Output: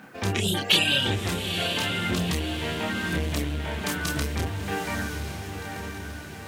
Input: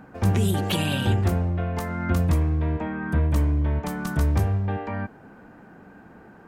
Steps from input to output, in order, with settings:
meter weighting curve D
reverb reduction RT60 0.67 s
0:02.21–0:04.28: high-shelf EQ 8,600 Hz +8.5 dB
bit-depth reduction 10 bits, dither none
multi-voice chorus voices 2, 0.9 Hz, delay 29 ms, depth 1.5 ms
feedback delay with all-pass diffusion 903 ms, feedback 53%, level −6.5 dB
saturating transformer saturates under 700 Hz
level +3.5 dB

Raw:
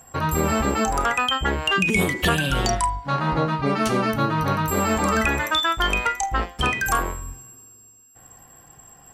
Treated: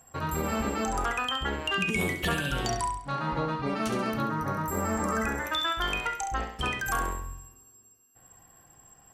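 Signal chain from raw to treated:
0:04.22–0:05.46: flat-topped bell 3,300 Hz −11 dB 1.1 octaves
on a send: flutter between parallel walls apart 11.6 metres, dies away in 0.56 s
on the sum: level −8.5 dB

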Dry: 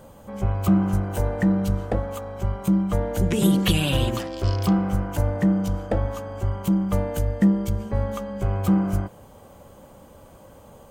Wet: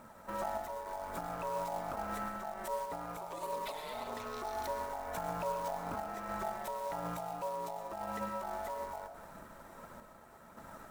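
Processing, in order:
high-pass filter 62 Hz 6 dB per octave
low-shelf EQ 370 Hz +3 dB
downward compressor 4 to 1, threshold −28 dBFS, peak gain reduction 14 dB
brickwall limiter −25 dBFS, peak gain reduction 8.5 dB
ring modulation 760 Hz
phase shifter 1.7 Hz, delay 2.9 ms, feedback 27%
floating-point word with a short mantissa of 2 bits
sample-and-hold tremolo
convolution reverb RT60 0.50 s, pre-delay 80 ms, DRR 8 dB
level −2 dB

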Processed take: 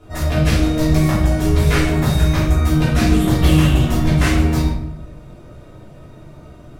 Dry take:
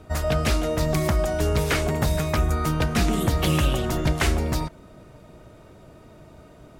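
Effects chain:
rectangular room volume 190 cubic metres, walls mixed, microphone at 3.1 metres
level −5.5 dB

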